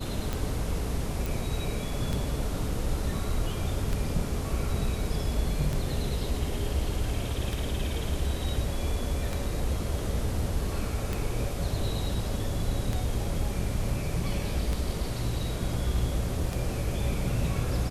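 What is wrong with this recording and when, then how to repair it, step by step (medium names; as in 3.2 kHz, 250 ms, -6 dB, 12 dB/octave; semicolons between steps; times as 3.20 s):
tick 33 1/3 rpm -16 dBFS
1.26 s: pop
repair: de-click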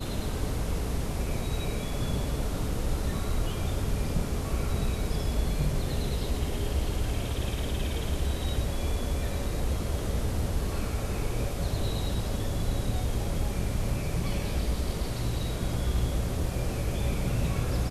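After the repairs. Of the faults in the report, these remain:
nothing left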